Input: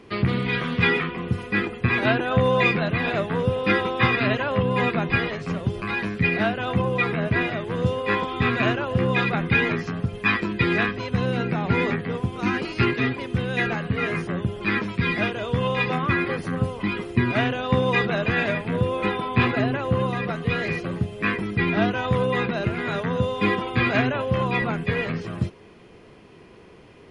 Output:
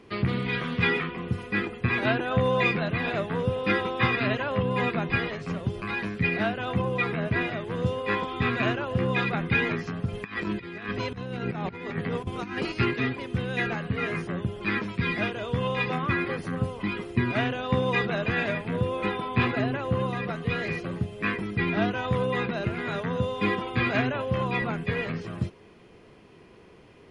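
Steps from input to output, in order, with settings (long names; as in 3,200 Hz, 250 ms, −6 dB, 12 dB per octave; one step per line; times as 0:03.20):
0:10.08–0:12.72: compressor whose output falls as the input rises −27 dBFS, ratio −0.5
level −4 dB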